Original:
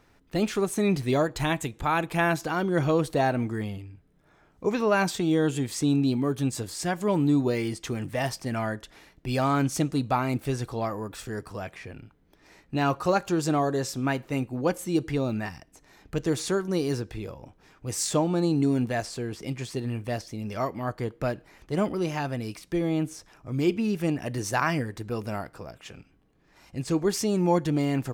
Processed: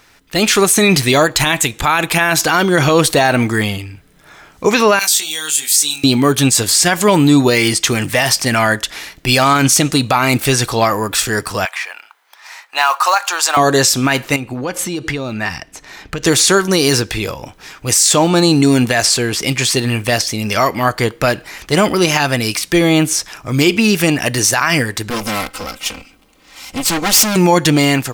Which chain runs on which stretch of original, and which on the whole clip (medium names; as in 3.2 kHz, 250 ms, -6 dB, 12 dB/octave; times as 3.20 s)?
4.99–6.04 s: differentiator + doubling 20 ms -3.5 dB
11.65–13.57 s: Chebyshev high-pass 890 Hz, order 3 + tilt shelf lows +5.5 dB, about 1.5 kHz + short-mantissa float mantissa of 4-bit
14.36–16.23 s: low-pass 3.3 kHz 6 dB/octave + compression, threshold -33 dBFS
25.10–27.36 s: comb filter that takes the minimum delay 3.8 ms + band-stop 1.7 kHz, Q 5.3 + hard clipper -31 dBFS
whole clip: tilt shelf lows -7.5 dB, about 1.1 kHz; level rider gain up to 8 dB; loudness maximiser +13 dB; trim -1 dB